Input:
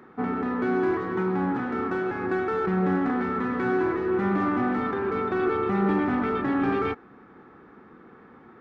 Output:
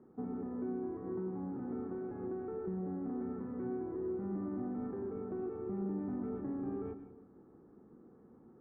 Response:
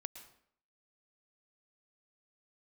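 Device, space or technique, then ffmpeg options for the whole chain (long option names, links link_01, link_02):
television next door: -filter_complex "[0:a]acompressor=threshold=-28dB:ratio=4,lowpass=510[link_01];[1:a]atrim=start_sample=2205[link_02];[link_01][link_02]afir=irnorm=-1:irlink=0,volume=-3.5dB"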